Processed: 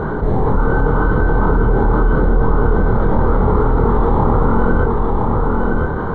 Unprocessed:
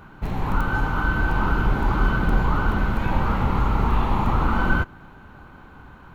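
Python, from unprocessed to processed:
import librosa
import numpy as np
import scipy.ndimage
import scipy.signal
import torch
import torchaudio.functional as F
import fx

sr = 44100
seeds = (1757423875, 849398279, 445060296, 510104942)

y = scipy.signal.lfilter(np.full(17, 1.0 / 17), 1.0, x)
y = fx.peak_eq(y, sr, hz=450.0, db=13.0, octaves=0.46)
y = fx.doubler(y, sr, ms=26.0, db=-2.5)
y = y + 10.0 ** (-7.5 / 20.0) * np.pad(y, (int(1014 * sr / 1000.0), 0))[:len(y)]
y = fx.env_flatten(y, sr, amount_pct=70)
y = F.gain(torch.from_numpy(y), -1.0).numpy()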